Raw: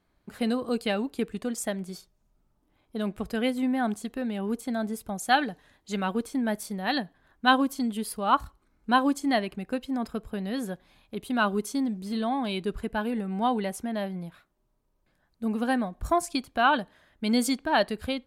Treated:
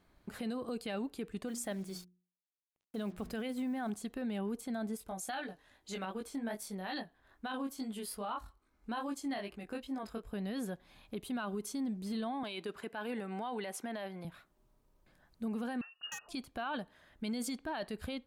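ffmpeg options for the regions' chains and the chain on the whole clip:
ffmpeg -i in.wav -filter_complex "[0:a]asettb=1/sr,asplit=3[link_01][link_02][link_03];[link_01]atrim=end=1.474[link_04];[link_02]atrim=start=1.47:end=3.9,asetpts=PTS-STARTPTS,afade=type=in:duration=0.004:curve=qsin,afade=type=out:start_time=2.426:duration=0.004:curve=qsin,acrusher=bits=8:mix=0:aa=0.5,bandreject=frequency=60:width_type=h:width=6,bandreject=frequency=120:width_type=h:width=6,bandreject=frequency=180:width_type=h:width=6,bandreject=frequency=240:width_type=h:width=6,bandreject=frequency=300:width_type=h:width=6,bandreject=frequency=360:width_type=h:width=6[link_05];[link_03]atrim=start=3.896[link_06];[link_04][link_05]acrossfade=duration=0.004:curve1=hsin:curve2=qsin[link_07];[link_07][link_06]acrossfade=duration=0.004:curve1=qsin:curve2=hsin,asettb=1/sr,asplit=3[link_08][link_09][link_10];[link_08]atrim=end=4.974[link_11];[link_09]atrim=start=4.97:end=10.33,asetpts=PTS-STARTPTS,afade=type=in:duration=0.004:curve=qsin,afade=type=out:start_time=5.356:duration=0.004:curve=qsin,equalizer=frequency=150:width_type=o:width=1.2:gain=-7,flanger=delay=18.5:depth=3.5:speed=2.4[link_12];[link_10]atrim=start=10.326[link_13];[link_11][link_12]acrossfade=duration=0.004:curve1=hsin:curve2=qsin[link_14];[link_14][link_13]acrossfade=duration=0.004:curve1=qsin:curve2=hsin,asettb=1/sr,asplit=3[link_15][link_16][link_17];[link_15]atrim=end=12.434[link_18];[link_16]atrim=start=12.43:end=14.25,asetpts=PTS-STARTPTS,afade=type=in:duration=0.004:curve=qsin,afade=type=out:start_time=1.816:duration=0.004:curve=qsin,highpass=280,equalizer=frequency=2000:width=0.36:gain=5[link_19];[link_17]atrim=start=14.246[link_20];[link_18][link_19]acrossfade=duration=0.004:curve1=hsin:curve2=qsin[link_21];[link_21][link_20]acrossfade=duration=0.004:curve1=qsin:curve2=hsin,asettb=1/sr,asplit=3[link_22][link_23][link_24];[link_22]atrim=end=15.814[link_25];[link_23]atrim=start=15.81:end=16.29,asetpts=PTS-STARTPTS,afade=type=in:duration=0.004:curve=qsin,afade=type=out:start_time=0.476:duration=0.004:curve=qsin,lowpass=frequency=2500:width_type=q:width=0.5098,lowpass=frequency=2500:width_type=q:width=0.6013,lowpass=frequency=2500:width_type=q:width=0.9,lowpass=frequency=2500:width_type=q:width=2.563,afreqshift=-2900,asoftclip=type=hard:threshold=-16dB,asuperstop=centerf=2200:order=4:qfactor=1.2[link_26];[link_24]atrim=start=16.286[link_27];[link_25][link_26]acrossfade=duration=0.004:curve1=hsin:curve2=qsin[link_28];[link_28][link_27]acrossfade=duration=0.004:curve1=qsin:curve2=hsin,acompressor=threshold=-53dB:ratio=1.5,alimiter=level_in=9.5dB:limit=-24dB:level=0:latency=1:release=12,volume=-9.5dB,volume=3dB" out.wav

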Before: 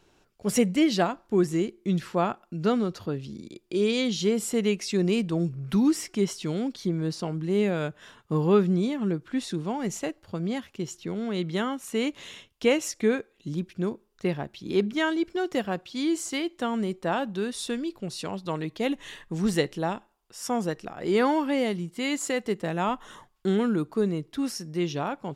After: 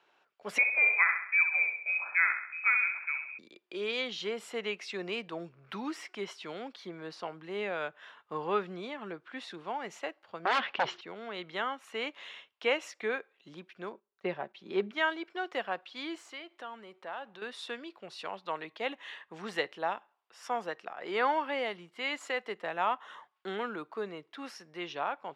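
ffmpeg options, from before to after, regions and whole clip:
ffmpeg -i in.wav -filter_complex "[0:a]asettb=1/sr,asplit=3[link_01][link_02][link_03];[link_01]atrim=end=0.584[link_04];[link_02]atrim=start=0.58:end=3.39,asetpts=PTS-STARTPTS,afade=type=in:duration=0.004:curve=qsin,afade=type=out:start_time=2.806:duration=0.004:curve=qsin,aemphasis=mode=production:type=bsi,lowpass=frequency=2300:width_type=q:width=0.5098,lowpass=frequency=2300:width_type=q:width=0.6013,lowpass=frequency=2300:width_type=q:width=0.9,lowpass=frequency=2300:width_type=q:width=2.563,afreqshift=-2700,aecho=1:1:66|132|198|264|330|396:0.447|0.219|0.107|0.0526|0.0258|0.0126,atrim=end_sample=123921[link_05];[link_03]atrim=start=3.386[link_06];[link_04][link_05]acrossfade=duration=0.004:curve1=hsin:curve2=qsin[link_07];[link_07][link_06]acrossfade=duration=0.004:curve1=qsin:curve2=hsin,asettb=1/sr,asplit=3[link_08][link_09][link_10];[link_08]atrim=end=10.454[link_11];[link_09]atrim=start=10.45:end=11.01,asetpts=PTS-STARTPTS,afade=type=in:duration=0.004:curve=qsin,afade=type=out:start_time=0.556:duration=0.004:curve=qsin,lowpass=frequency=4200:width=0.5412,lowpass=frequency=4200:width=1.3066,aeval=exprs='0.106*sin(PI/2*4.47*val(0)/0.106)':channel_layout=same[link_12];[link_10]atrim=start=11.006[link_13];[link_11][link_12]acrossfade=duration=0.004:curve1=hsin:curve2=qsin[link_14];[link_14][link_13]acrossfade=duration=0.004:curve1=qsin:curve2=hsin,asettb=1/sr,asplit=3[link_15][link_16][link_17];[link_15]atrim=end=13.924[link_18];[link_16]atrim=start=13.92:end=14.91,asetpts=PTS-STARTPTS,afade=type=in:duration=0.004:curve=qsin,afade=type=out:start_time=0.986:duration=0.004:curve=qsin,agate=range=-11dB:threshold=-52dB:ratio=16:release=100:detection=peak,tiltshelf=frequency=910:gain=4.5,aecho=1:1:5.2:0.44,atrim=end_sample=43659[link_19];[link_17]atrim=start=14.906[link_20];[link_18][link_19]acrossfade=duration=0.004:curve1=hsin:curve2=qsin[link_21];[link_21][link_20]acrossfade=duration=0.004:curve1=qsin:curve2=hsin,asettb=1/sr,asplit=3[link_22][link_23][link_24];[link_22]atrim=end=16.154[link_25];[link_23]atrim=start=16.15:end=17.42,asetpts=PTS-STARTPTS,afade=type=in:duration=0.004:curve=qsin,afade=type=out:start_time=1.266:duration=0.004:curve=qsin,aeval=exprs='if(lt(val(0),0),0.708*val(0),val(0))':channel_layout=same,acompressor=threshold=-36dB:ratio=2.5:attack=3.2:release=140:knee=1:detection=peak[link_26];[link_24]atrim=start=17.416[link_27];[link_25][link_26]acrossfade=duration=0.004:curve1=hsin:curve2=qsin[link_28];[link_28][link_27]acrossfade=duration=0.004:curve1=qsin:curve2=hsin,highpass=190,acrossover=split=580 3600:gain=0.112 1 0.0891[link_29][link_30][link_31];[link_29][link_30][link_31]amix=inputs=3:normalize=0" out.wav

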